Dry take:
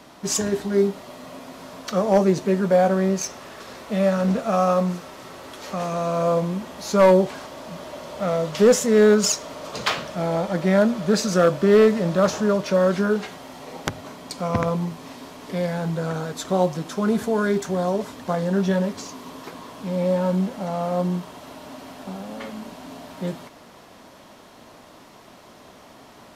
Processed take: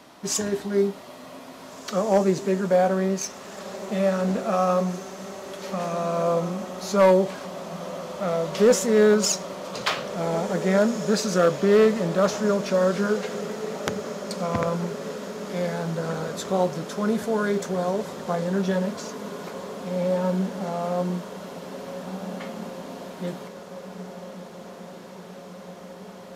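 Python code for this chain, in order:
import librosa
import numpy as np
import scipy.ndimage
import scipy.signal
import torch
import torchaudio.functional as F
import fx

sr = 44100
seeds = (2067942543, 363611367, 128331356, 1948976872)

p1 = fx.low_shelf(x, sr, hz=91.0, db=-8.5)
p2 = p1 + fx.echo_diffused(p1, sr, ms=1854, feedback_pct=71, wet_db=-13.5, dry=0)
y = p2 * librosa.db_to_amplitude(-2.0)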